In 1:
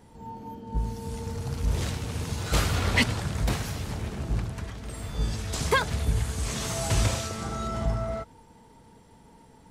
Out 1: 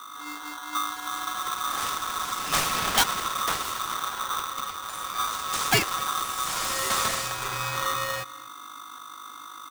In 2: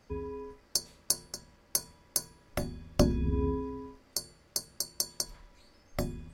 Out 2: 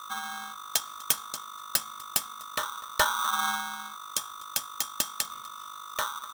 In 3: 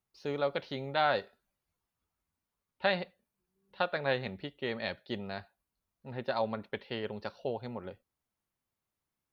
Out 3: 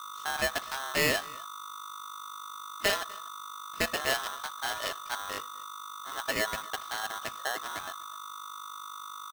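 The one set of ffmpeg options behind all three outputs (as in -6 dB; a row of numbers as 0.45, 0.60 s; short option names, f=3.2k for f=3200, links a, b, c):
-filter_complex "[0:a]highshelf=f=4.8k:g=4,acrossover=split=170|840|2700[a][b][c][d];[a]alimiter=level_in=1.5dB:limit=-24dB:level=0:latency=1:release=236,volume=-1.5dB[e];[e][b][c][d]amix=inputs=4:normalize=0,aeval=exprs='(mod(3.76*val(0)+1,2)-1)/3.76':c=same,aeval=exprs='val(0)+0.00794*(sin(2*PI*50*n/s)+sin(2*PI*2*50*n/s)/2+sin(2*PI*3*50*n/s)/3+sin(2*PI*4*50*n/s)/4+sin(2*PI*5*50*n/s)/5)':c=same,aecho=1:1:248:0.0668,aeval=exprs='val(0)*sgn(sin(2*PI*1200*n/s))':c=same,volume=1dB"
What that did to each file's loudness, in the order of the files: +2.0, +3.5, +1.5 LU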